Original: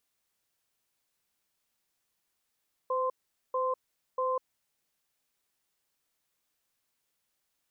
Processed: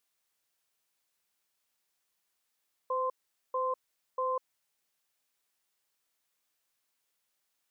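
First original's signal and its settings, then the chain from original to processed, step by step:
tone pair in a cadence 513 Hz, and 1,040 Hz, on 0.20 s, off 0.44 s, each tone −29.5 dBFS 1.73 s
low-shelf EQ 330 Hz −8 dB

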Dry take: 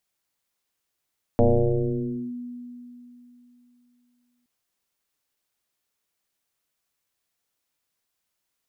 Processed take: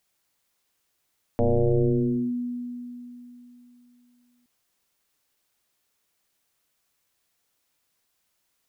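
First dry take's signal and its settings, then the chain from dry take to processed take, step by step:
two-operator FM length 3.07 s, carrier 244 Hz, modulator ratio 0.47, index 3.6, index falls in 0.94 s linear, decay 3.21 s, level −13 dB
in parallel at −0.5 dB: downward compressor, threshold −28 dBFS
on the sum: brickwall limiter −17.5 dBFS

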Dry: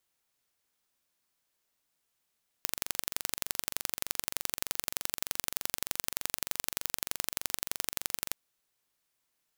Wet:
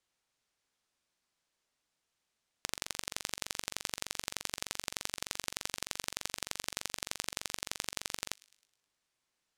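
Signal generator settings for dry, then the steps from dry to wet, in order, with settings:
impulse train 23.3 per second, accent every 2, −2 dBFS 5.68 s
low-pass filter 7,700 Hz 12 dB per octave
delay with a high-pass on its return 105 ms, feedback 49%, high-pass 2,400 Hz, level −21.5 dB

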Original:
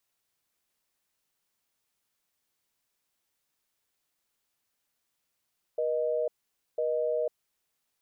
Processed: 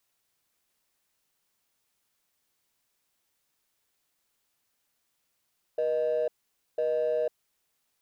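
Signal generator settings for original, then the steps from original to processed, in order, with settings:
call progress tone busy tone, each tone −28.5 dBFS 1.86 s
in parallel at −6.5 dB: hard clipping −36 dBFS

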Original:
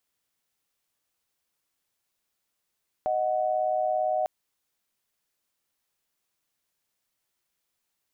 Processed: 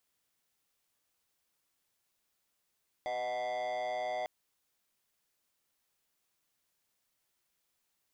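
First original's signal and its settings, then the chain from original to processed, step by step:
held notes D#5/F#5 sine, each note −26 dBFS 1.20 s
soft clipping −34 dBFS

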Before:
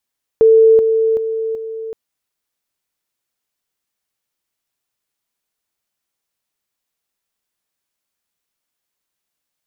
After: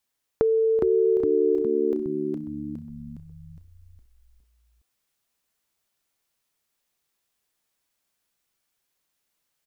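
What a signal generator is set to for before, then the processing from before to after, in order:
level staircase 446 Hz −5.5 dBFS, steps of −6 dB, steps 4, 0.38 s 0.00 s
downward compressor 6 to 1, threshold −21 dBFS
echo with shifted repeats 412 ms, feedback 52%, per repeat −72 Hz, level −3.5 dB

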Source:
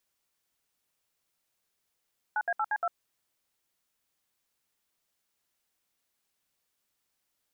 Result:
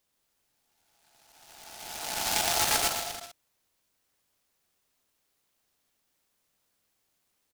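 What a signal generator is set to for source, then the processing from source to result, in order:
touch tones "9A8C2", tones 51 ms, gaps 66 ms, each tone −28.5 dBFS
peak hold with a rise ahead of every peak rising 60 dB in 1.94 s
on a send: bouncing-ball delay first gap 130 ms, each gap 0.8×, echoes 5
on the sum: short delay modulated by noise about 4,300 Hz, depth 0.19 ms

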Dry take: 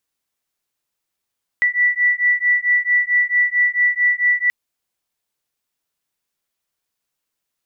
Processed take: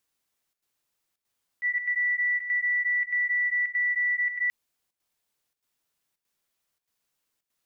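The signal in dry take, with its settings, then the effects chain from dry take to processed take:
two tones that beat 1,960 Hz, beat 4.5 Hz, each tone −17 dBFS 2.88 s
volume swells 126 ms
brickwall limiter −22 dBFS
square-wave tremolo 1.6 Hz, depth 65%, duty 85%

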